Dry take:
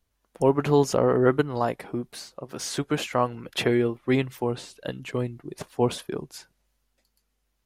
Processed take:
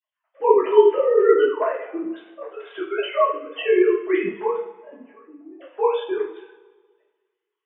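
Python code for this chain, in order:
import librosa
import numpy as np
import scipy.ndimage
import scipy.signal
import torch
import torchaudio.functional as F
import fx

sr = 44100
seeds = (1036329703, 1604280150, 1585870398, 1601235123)

y = fx.sine_speech(x, sr)
y = fx.double_bandpass(y, sr, hz=450.0, octaves=1.3, at=(4.56, 5.61))
y = fx.rev_double_slope(y, sr, seeds[0], early_s=0.48, late_s=1.6, knee_db=-18, drr_db=-8.5)
y = y * 10.0 ** (-4.5 / 20.0)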